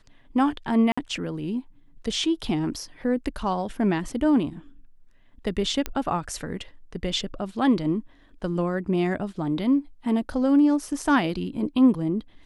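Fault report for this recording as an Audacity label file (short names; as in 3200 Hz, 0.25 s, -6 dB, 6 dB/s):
0.920000	0.970000	gap 55 ms
5.860000	5.860000	pop -12 dBFS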